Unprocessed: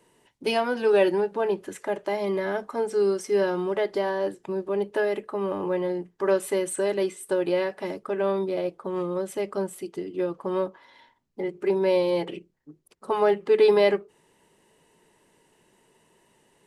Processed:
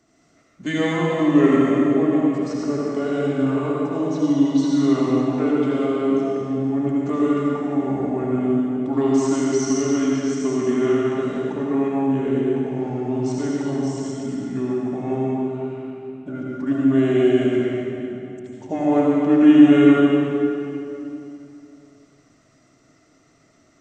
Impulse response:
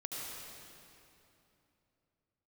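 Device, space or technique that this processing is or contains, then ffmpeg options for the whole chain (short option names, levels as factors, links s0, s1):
slowed and reverbed: -filter_complex "[0:a]asetrate=30870,aresample=44100[s0];[1:a]atrim=start_sample=2205[s1];[s0][s1]afir=irnorm=-1:irlink=0,volume=1.58"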